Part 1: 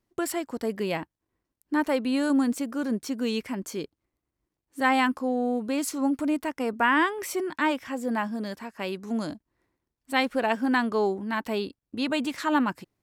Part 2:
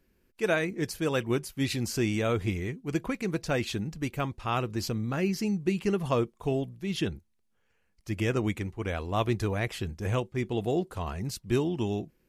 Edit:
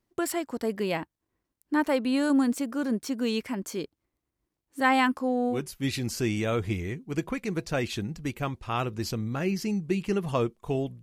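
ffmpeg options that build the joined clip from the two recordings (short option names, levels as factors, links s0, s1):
-filter_complex "[0:a]apad=whole_dur=11.02,atrim=end=11.02,atrim=end=5.64,asetpts=PTS-STARTPTS[s0];[1:a]atrim=start=1.25:end=6.79,asetpts=PTS-STARTPTS[s1];[s0][s1]acrossfade=d=0.16:c1=tri:c2=tri"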